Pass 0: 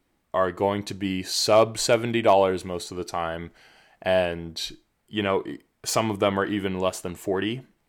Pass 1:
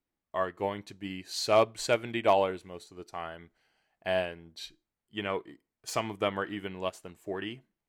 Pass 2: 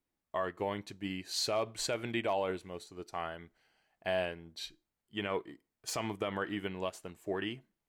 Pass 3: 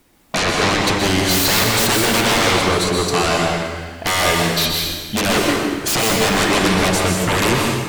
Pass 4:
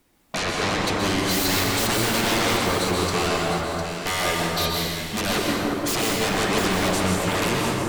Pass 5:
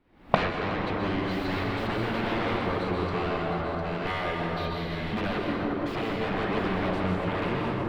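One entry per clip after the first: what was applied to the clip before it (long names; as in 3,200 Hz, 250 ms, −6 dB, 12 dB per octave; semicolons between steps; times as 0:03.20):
dynamic equaliser 2,100 Hz, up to +4 dB, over −39 dBFS, Q 0.81; expander for the loud parts 1.5 to 1, over −39 dBFS; level −5.5 dB
brickwall limiter −22.5 dBFS, peak gain reduction 11 dB
in parallel at −2.5 dB: downward compressor, threshold −41 dBFS, peak gain reduction 12.5 dB; on the sum: sine wavefolder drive 18 dB, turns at −19 dBFS; dense smooth reverb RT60 1.5 s, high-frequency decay 0.85×, pre-delay 110 ms, DRR −0.5 dB; level +4 dB
delay that swaps between a low-pass and a high-pass 352 ms, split 1,500 Hz, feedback 56%, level −2.5 dB; level −7.5 dB
camcorder AGC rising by 72 dB per second; high-frequency loss of the air 410 metres; level −4 dB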